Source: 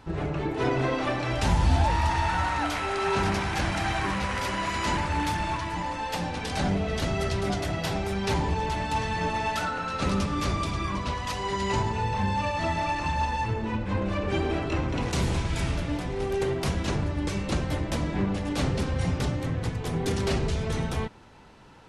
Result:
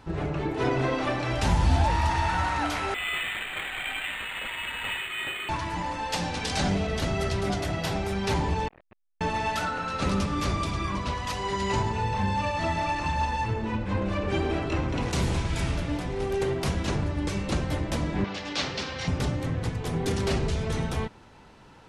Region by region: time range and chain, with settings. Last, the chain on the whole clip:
2.94–5.49 s: high-pass 260 Hz + frequency inversion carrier 3.9 kHz + decimation joined by straight lines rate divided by 8×
6.12–6.87 s: low-pass 8.1 kHz + treble shelf 3.6 kHz +9.5 dB
8.68–9.21 s: cascade formant filter e + LPC vocoder at 8 kHz pitch kept + transformer saturation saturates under 1.1 kHz
18.24–19.08 s: low-pass 5.3 kHz 24 dB/octave + tilt EQ +4 dB/octave
whole clip: none

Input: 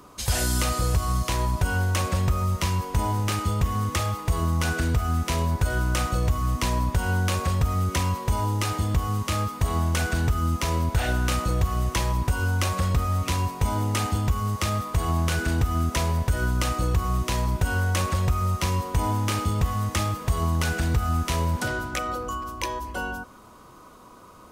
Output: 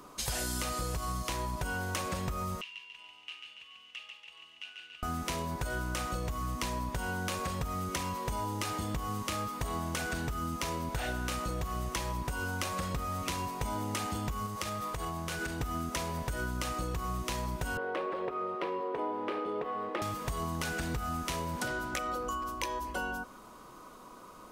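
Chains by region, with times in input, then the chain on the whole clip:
2.61–5.03 s: band-pass filter 2.8 kHz, Q 12 + feedback delay 142 ms, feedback 52%, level -5 dB
14.46–15.61 s: band-stop 260 Hz, Q 5.4 + compression, threshold -26 dBFS
17.77–20.02 s: resonant high-pass 410 Hz, resonance Q 3.5 + distance through air 450 m
whole clip: peaking EQ 86 Hz -11.5 dB 1 oct; compression, threshold -29 dBFS; trim -2 dB

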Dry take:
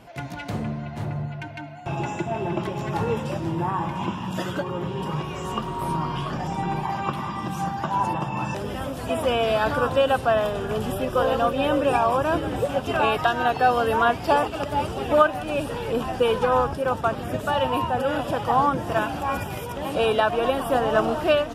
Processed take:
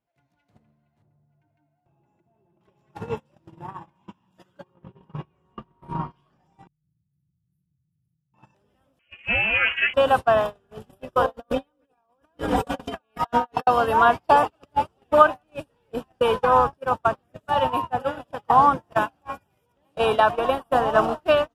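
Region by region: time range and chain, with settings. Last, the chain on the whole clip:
1.02–2.61 s: compression 5:1, threshold -32 dBFS + tilt shelf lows +6.5 dB, about 1.3 kHz
4.74–6.11 s: tone controls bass +4 dB, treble -15 dB + tape noise reduction on one side only decoder only
6.67–8.34 s: brick-wall FIR band-stop 180–10000 Hz + compressor with a negative ratio -37 dBFS + loudspeaker Doppler distortion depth 0.24 ms
8.99–9.94 s: peaking EQ 93 Hz -9 dB 0.91 oct + comb 6.6 ms, depth 64% + frequency inversion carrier 3.1 kHz
11.26–13.67 s: band-stop 2.7 kHz, Q 15 + compressor with a negative ratio -27 dBFS, ratio -0.5 + comb 4.2 ms, depth 63%
whole clip: gate -22 dBFS, range -36 dB; dynamic bell 990 Hz, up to +7 dB, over -35 dBFS, Q 1.4; trim -1 dB

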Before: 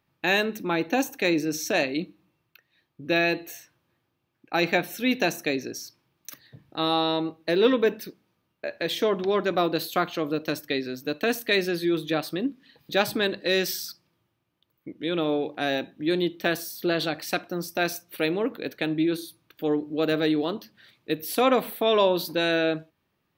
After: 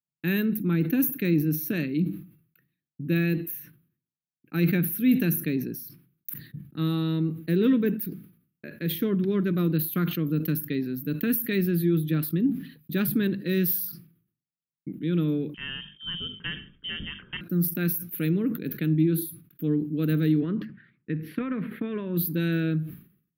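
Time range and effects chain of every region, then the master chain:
15.54–17.41 s: frequency inversion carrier 3.4 kHz + hum notches 50/100/150/200/250/300/350 Hz
20.40–22.17 s: resonant low-pass 1.9 kHz, resonance Q 2 + compression, threshold -22 dBFS
whole clip: expander -48 dBFS; FFT filter 100 Hz 0 dB, 160 Hz +13 dB, 420 Hz -5 dB, 740 Hz -26 dB, 1.4 kHz -7 dB, 2.8 kHz -10 dB, 7.7 kHz -19 dB, 11 kHz +9 dB; decay stretcher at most 110 dB/s

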